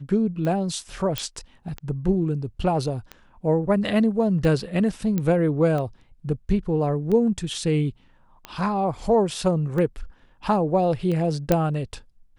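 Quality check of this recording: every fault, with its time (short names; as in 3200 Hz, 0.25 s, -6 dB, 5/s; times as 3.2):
tick 45 rpm -18 dBFS
1.18 pop -8 dBFS
5.18 pop -13 dBFS
11.52 pop -6 dBFS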